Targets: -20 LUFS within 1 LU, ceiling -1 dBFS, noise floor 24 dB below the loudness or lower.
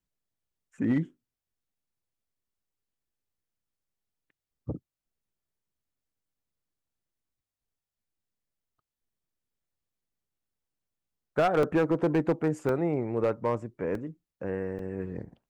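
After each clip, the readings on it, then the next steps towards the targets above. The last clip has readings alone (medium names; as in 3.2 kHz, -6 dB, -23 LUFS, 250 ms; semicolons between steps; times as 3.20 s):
clipped samples 0.3%; clipping level -18.5 dBFS; dropouts 4; longest dropout 2.3 ms; loudness -29.0 LUFS; peak level -18.5 dBFS; loudness target -20.0 LUFS
-> clip repair -18.5 dBFS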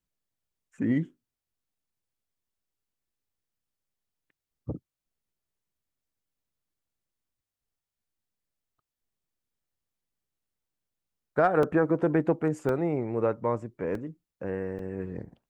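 clipped samples 0.0%; dropouts 4; longest dropout 2.3 ms
-> interpolate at 11.63/12.69/13.95/14.79 s, 2.3 ms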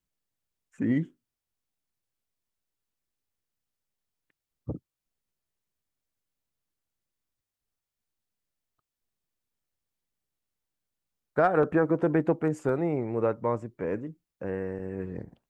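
dropouts 0; loudness -28.5 LUFS; peak level -10.0 dBFS; loudness target -20.0 LUFS
-> trim +8.5 dB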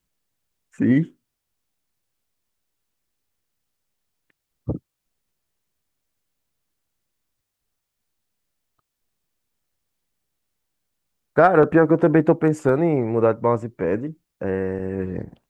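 loudness -20.0 LUFS; peak level -1.5 dBFS; noise floor -81 dBFS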